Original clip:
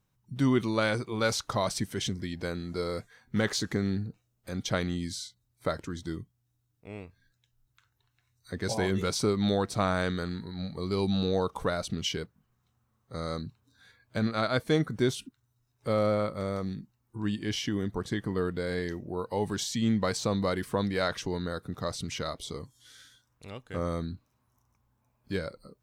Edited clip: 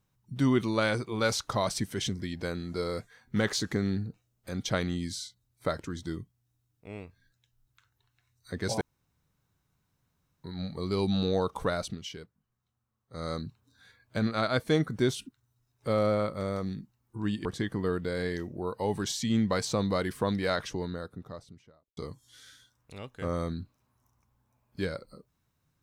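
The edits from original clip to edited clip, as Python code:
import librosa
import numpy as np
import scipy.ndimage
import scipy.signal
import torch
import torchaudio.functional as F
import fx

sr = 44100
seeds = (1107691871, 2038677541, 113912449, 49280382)

y = fx.studio_fade_out(x, sr, start_s=20.93, length_s=1.56)
y = fx.edit(y, sr, fx.room_tone_fill(start_s=8.81, length_s=1.63),
    fx.fade_down_up(start_s=11.77, length_s=1.55, db=-9.5, fade_s=0.22, curve='qsin'),
    fx.cut(start_s=17.45, length_s=0.52), tone=tone)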